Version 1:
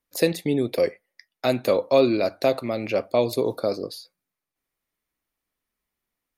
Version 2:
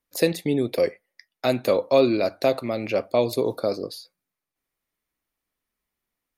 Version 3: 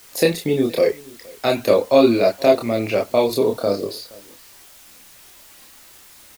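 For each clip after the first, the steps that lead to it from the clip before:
no processing that can be heard
background noise white −51 dBFS; single-tap delay 471 ms −23.5 dB; multi-voice chorus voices 6, 0.37 Hz, delay 28 ms, depth 2.6 ms; level +8 dB

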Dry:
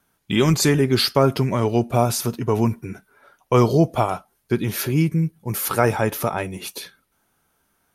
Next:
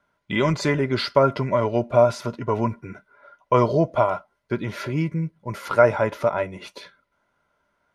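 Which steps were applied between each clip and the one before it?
low-pass filter 4,600 Hz 12 dB per octave
hollow resonant body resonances 600/1,000/1,400/2,000 Hz, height 14 dB, ringing for 45 ms
level −5.5 dB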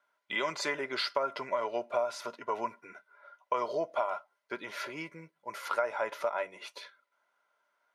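high-pass filter 620 Hz 12 dB per octave
downward compressor 6 to 1, threshold −22 dBFS, peak gain reduction 10 dB
level −4.5 dB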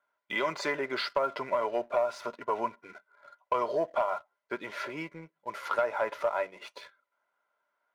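high-shelf EQ 3,700 Hz −10.5 dB
leveller curve on the samples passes 1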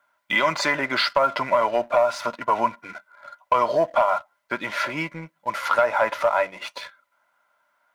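parametric band 410 Hz −14 dB 0.42 octaves
in parallel at −2 dB: brickwall limiter −24.5 dBFS, peak gain reduction 7 dB
on the sum: level +7 dB

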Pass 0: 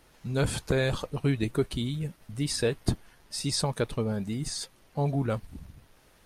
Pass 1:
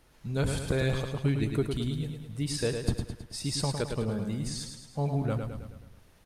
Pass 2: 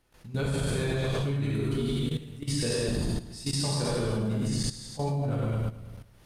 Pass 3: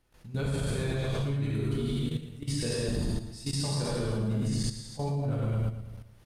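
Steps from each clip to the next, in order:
low-shelf EQ 160 Hz +4.5 dB; on a send: repeating echo 107 ms, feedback 52%, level −6 dB; on the sum: level −4 dB
reverb whose tail is shaped and stops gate 270 ms flat, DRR −7 dB; output level in coarse steps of 14 dB
low-shelf EQ 160 Hz +4 dB; single-tap delay 116 ms −12.5 dB; level −3.5 dB

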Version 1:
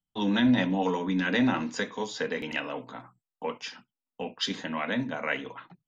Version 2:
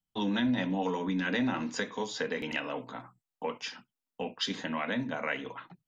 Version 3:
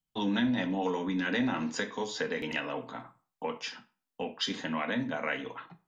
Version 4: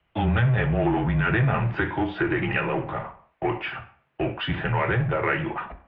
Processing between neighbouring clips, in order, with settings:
downward compressor 2 to 1, threshold −30 dBFS, peak gain reduction 7 dB
convolution reverb RT60 0.40 s, pre-delay 5 ms, DRR 9.5 dB
power curve on the samples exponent 0.7; single-sideband voice off tune −120 Hz 180–2,800 Hz; level +5.5 dB

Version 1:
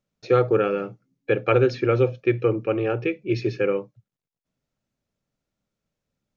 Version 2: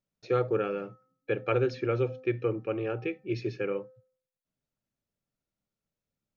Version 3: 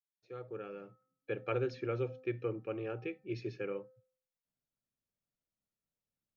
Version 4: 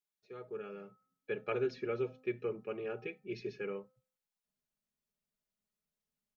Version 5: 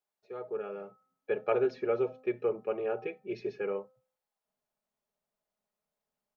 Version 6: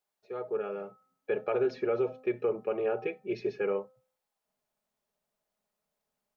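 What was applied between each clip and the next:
hum removal 257.9 Hz, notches 7; level −8 dB
fade in at the beginning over 1.42 s; level −7.5 dB
comb filter 4.8 ms, depth 72%; level −1.5 dB
parametric band 710 Hz +15 dB 1.8 octaves; level −2.5 dB
brickwall limiter −23.5 dBFS, peak gain reduction 7.5 dB; level +3.5 dB

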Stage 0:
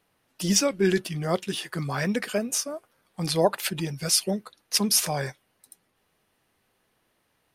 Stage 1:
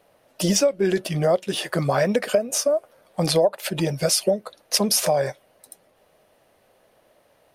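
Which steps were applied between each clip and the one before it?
parametric band 590 Hz +15 dB 0.74 octaves
downward compressor 6 to 1, threshold −23 dBFS, peak gain reduction 18 dB
level +6 dB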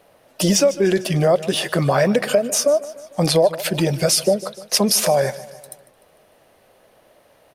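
repeating echo 150 ms, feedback 53%, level −19 dB
in parallel at −1 dB: brickwall limiter −16.5 dBFS, peak gain reduction 9.5 dB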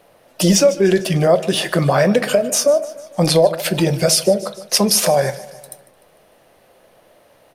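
convolution reverb RT60 0.35 s, pre-delay 6 ms, DRR 12.5 dB
level +2 dB

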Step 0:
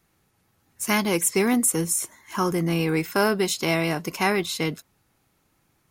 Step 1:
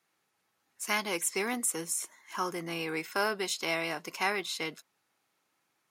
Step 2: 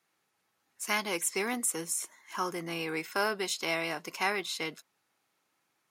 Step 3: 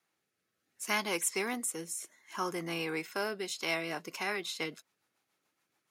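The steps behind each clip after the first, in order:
meter weighting curve A; level −6.5 dB
no processing that can be heard
rotating-speaker cabinet horn 0.65 Hz, later 7 Hz, at 0:03.37

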